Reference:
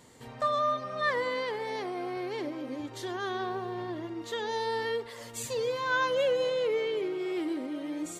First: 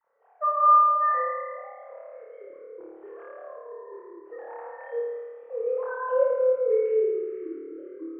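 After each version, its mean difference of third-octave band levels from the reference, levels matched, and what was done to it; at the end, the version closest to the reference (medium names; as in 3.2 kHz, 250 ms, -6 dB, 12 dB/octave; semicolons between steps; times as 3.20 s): 17.0 dB: formants replaced by sine waves; Gaussian low-pass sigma 5.9 samples; flutter echo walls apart 4.7 m, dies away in 1.4 s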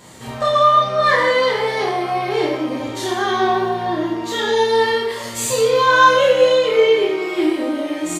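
3.0 dB: in parallel at -7.5 dB: saturation -31 dBFS, distortion -10 dB; on the sum: doubling 29 ms -3 dB; gated-style reverb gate 250 ms falling, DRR -3 dB; trim +7 dB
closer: second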